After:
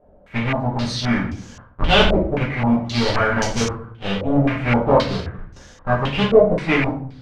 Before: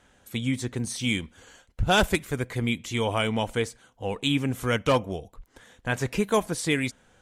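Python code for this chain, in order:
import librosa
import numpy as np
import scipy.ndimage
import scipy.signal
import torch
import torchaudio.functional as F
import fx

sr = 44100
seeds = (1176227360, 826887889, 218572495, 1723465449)

y = fx.halfwave_hold(x, sr)
y = fx.room_shoebox(y, sr, seeds[0], volume_m3=63.0, walls='mixed', distance_m=1.2)
y = fx.filter_held_lowpass(y, sr, hz=3.8, low_hz=600.0, high_hz=6100.0)
y = F.gain(torch.from_numpy(y), -5.5).numpy()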